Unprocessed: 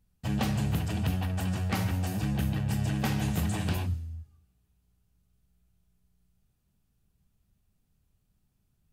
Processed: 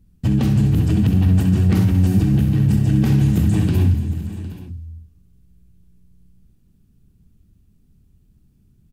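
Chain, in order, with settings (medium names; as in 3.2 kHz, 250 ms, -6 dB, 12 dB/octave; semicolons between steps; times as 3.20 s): resonant low shelf 460 Hz +10.5 dB, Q 1.5; peak limiter -15 dBFS, peak gain reduction 8.5 dB; 1.57–2.98 s: word length cut 12-bit, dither none; on a send: multi-tap echo 65/227/490/581/758/830 ms -9/-14.5/-19.5/-19.5/-17/-17 dB; on the sum: trim +5 dB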